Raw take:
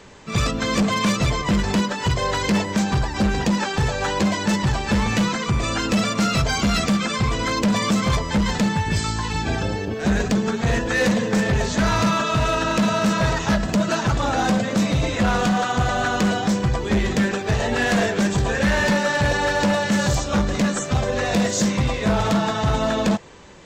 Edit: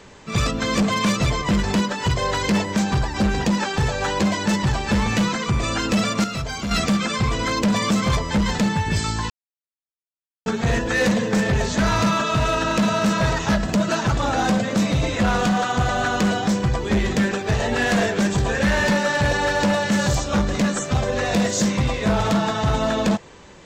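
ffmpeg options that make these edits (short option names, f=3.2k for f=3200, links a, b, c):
-filter_complex "[0:a]asplit=5[a][b][c][d][e];[a]atrim=end=6.242[f];[b]atrim=start=6.238:end=6.712,asetpts=PTS-STARTPTS,volume=-7dB[g];[c]atrim=start=6.708:end=9.3,asetpts=PTS-STARTPTS,afade=t=out:st=2.588:d=0.004:c=hsin[h];[d]atrim=start=9.3:end=10.46,asetpts=PTS-STARTPTS,volume=0[i];[e]atrim=start=10.46,asetpts=PTS-STARTPTS,afade=t=in:d=0.004:c=hsin[j];[f][g]acrossfade=d=0.004:c1=hsin:c2=hsin[k];[h][i][j]concat=n=3:v=0:a=1[l];[k][l]acrossfade=d=0.004:c1=hsin:c2=hsin"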